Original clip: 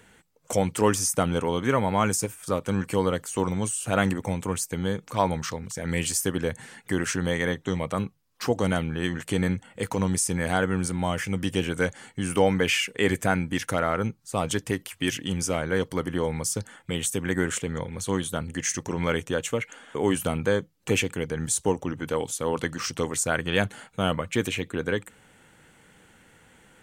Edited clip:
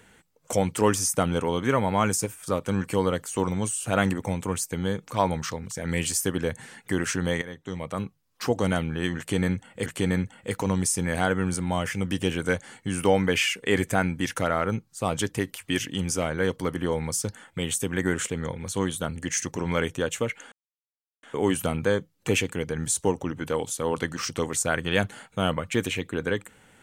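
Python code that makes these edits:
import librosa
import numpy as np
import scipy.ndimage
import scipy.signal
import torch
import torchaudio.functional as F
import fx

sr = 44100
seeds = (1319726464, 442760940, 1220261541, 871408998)

y = fx.edit(x, sr, fx.fade_in_from(start_s=7.42, length_s=1.22, curve='qsin', floor_db=-16.0),
    fx.repeat(start_s=9.18, length_s=0.68, count=2),
    fx.insert_silence(at_s=19.84, length_s=0.71), tone=tone)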